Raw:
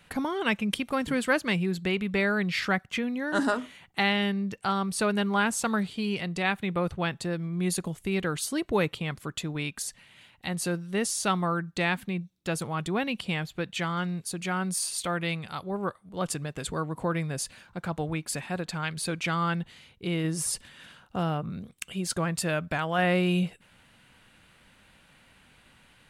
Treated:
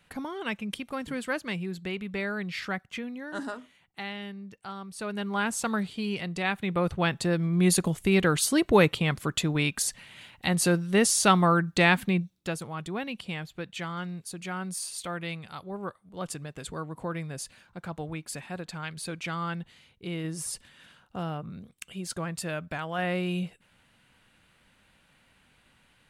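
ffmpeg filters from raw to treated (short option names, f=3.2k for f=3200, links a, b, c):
-af "volume=12dB,afade=t=out:st=2.99:d=0.67:silence=0.501187,afade=t=in:st=4.92:d=0.65:silence=0.298538,afade=t=in:st=6.5:d=1.05:silence=0.421697,afade=t=out:st=12.15:d=0.43:silence=0.281838"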